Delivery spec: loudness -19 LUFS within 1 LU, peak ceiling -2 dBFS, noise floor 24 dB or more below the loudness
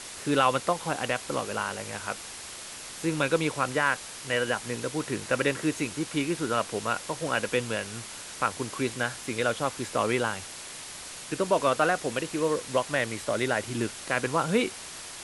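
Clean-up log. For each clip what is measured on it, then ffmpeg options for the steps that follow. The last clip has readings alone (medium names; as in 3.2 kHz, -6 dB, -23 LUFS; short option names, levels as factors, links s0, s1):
noise floor -42 dBFS; noise floor target -53 dBFS; loudness -29.0 LUFS; peak level -9.0 dBFS; loudness target -19.0 LUFS
-> -af "afftdn=nr=11:nf=-42"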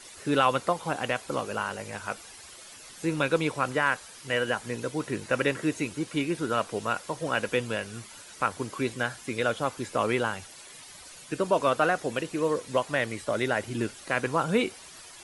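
noise floor -48 dBFS; noise floor target -53 dBFS
-> -af "afftdn=nr=6:nf=-48"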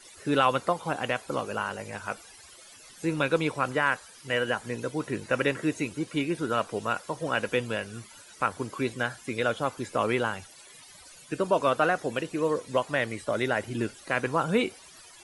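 noise floor -51 dBFS; noise floor target -53 dBFS
-> -af "afftdn=nr=6:nf=-51"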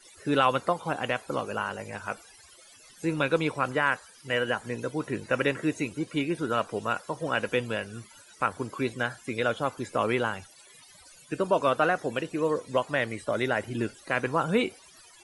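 noise floor -54 dBFS; loudness -29.0 LUFS; peak level -9.5 dBFS; loudness target -19.0 LUFS
-> -af "volume=3.16,alimiter=limit=0.794:level=0:latency=1"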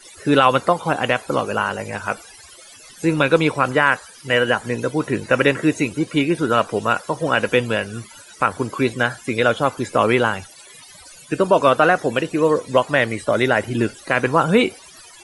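loudness -19.0 LUFS; peak level -2.0 dBFS; noise floor -44 dBFS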